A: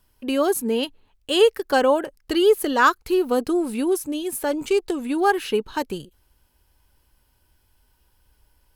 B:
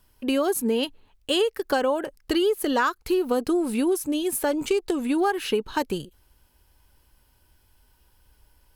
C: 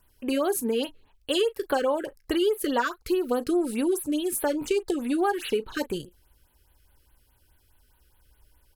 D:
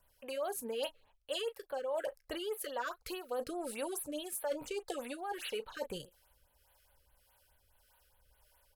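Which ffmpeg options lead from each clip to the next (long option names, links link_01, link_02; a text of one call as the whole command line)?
ffmpeg -i in.wav -af "acompressor=threshold=-21dB:ratio=10,volume=2dB" out.wav
ffmpeg -i in.wav -af "equalizer=frequency=200:width=2.4:gain=-4,aecho=1:1:17|37:0.133|0.141,afftfilt=real='re*(1-between(b*sr/1024,770*pow(6700/770,0.5+0.5*sin(2*PI*4.8*pts/sr))/1.41,770*pow(6700/770,0.5+0.5*sin(2*PI*4.8*pts/sr))*1.41))':imag='im*(1-between(b*sr/1024,770*pow(6700/770,0.5+0.5*sin(2*PI*4.8*pts/sr))/1.41,770*pow(6700/770,0.5+0.5*sin(2*PI*4.8*pts/sr))*1.41))':win_size=1024:overlap=0.75,volume=-1.5dB" out.wav
ffmpeg -i in.wav -filter_complex "[0:a]lowshelf=frequency=440:width_type=q:width=3:gain=-7,areverse,acompressor=threshold=-31dB:ratio=6,areverse,acrossover=split=460[link_01][link_02];[link_01]aeval=exprs='val(0)*(1-0.5/2+0.5/2*cos(2*PI*1.7*n/s))':channel_layout=same[link_03];[link_02]aeval=exprs='val(0)*(1-0.5/2-0.5/2*cos(2*PI*1.7*n/s))':channel_layout=same[link_04];[link_03][link_04]amix=inputs=2:normalize=0,volume=-1.5dB" out.wav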